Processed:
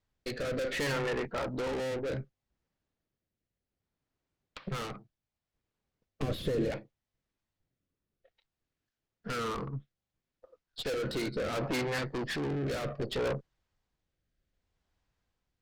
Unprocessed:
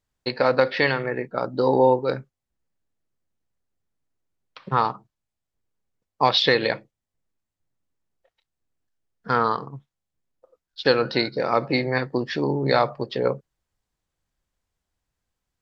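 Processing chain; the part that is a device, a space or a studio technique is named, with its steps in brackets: low-pass 5.1 kHz; overdriven rotary cabinet (valve stage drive 33 dB, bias 0.5; rotary cabinet horn 0.65 Hz); 6.22–6.71 s: tilt shelf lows +9.5 dB, about 680 Hz; trim +4.5 dB

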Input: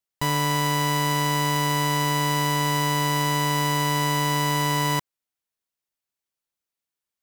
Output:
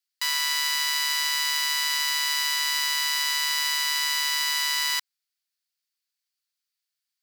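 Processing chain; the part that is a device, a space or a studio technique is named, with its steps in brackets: headphones lying on a table (high-pass 1.4 kHz 24 dB/octave; peaking EQ 4.6 kHz +9 dB 0.44 oct); trim +1.5 dB

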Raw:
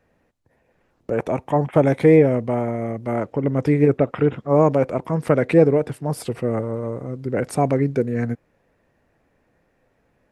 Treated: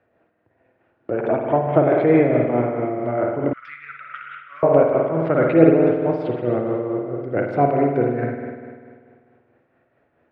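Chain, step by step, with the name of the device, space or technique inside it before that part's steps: combo amplifier with spring reverb and tremolo (spring tank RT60 1.9 s, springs 49 ms, chirp 40 ms, DRR -0.5 dB; tremolo 4.6 Hz, depth 39%; cabinet simulation 100–3500 Hz, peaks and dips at 110 Hz +5 dB, 180 Hz -5 dB, 340 Hz +7 dB, 670 Hz +7 dB, 1.4 kHz +6 dB); 3.53–4.63 s: elliptic high-pass 1.3 kHz, stop band 40 dB; trim -2.5 dB

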